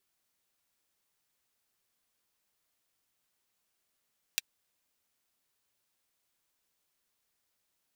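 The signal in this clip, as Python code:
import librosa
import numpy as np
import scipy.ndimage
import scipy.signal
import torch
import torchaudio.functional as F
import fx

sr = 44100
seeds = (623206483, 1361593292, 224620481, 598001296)

y = fx.drum_hat(sr, length_s=0.24, from_hz=2500.0, decay_s=0.03)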